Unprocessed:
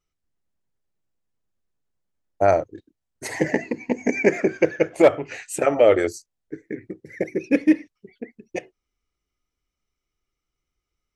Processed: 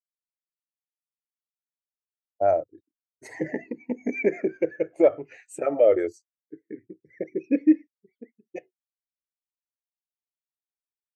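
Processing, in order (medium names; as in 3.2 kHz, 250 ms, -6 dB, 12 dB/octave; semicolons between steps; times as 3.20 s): high-pass 75 Hz 6 dB/octave; in parallel at +2 dB: peak limiter -14 dBFS, peak gain reduction 10.5 dB; on the sum: spectral contrast expander 1.5:1; trim -7.5 dB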